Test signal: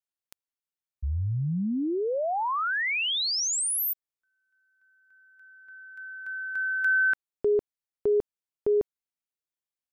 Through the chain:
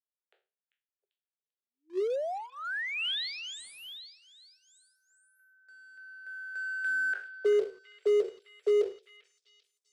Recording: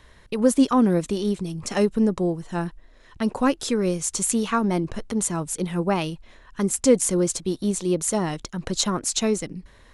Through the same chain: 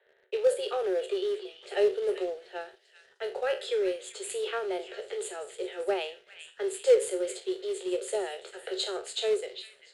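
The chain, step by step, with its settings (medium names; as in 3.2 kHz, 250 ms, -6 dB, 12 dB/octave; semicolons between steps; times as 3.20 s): spectral sustain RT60 0.33 s; level-controlled noise filter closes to 1.8 kHz, open at -17.5 dBFS; Chebyshev high-pass 370 Hz, order 10; peaking EQ 2.2 kHz -9.5 dB 0.63 oct; static phaser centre 2.5 kHz, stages 4; in parallel at -7.5 dB: companded quantiser 4-bit; on the sum: distance through air 76 m; on a send: repeats whose band climbs or falls 393 ms, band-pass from 2.5 kHz, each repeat 0.7 oct, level -8.5 dB; on the sum: trim -2 dB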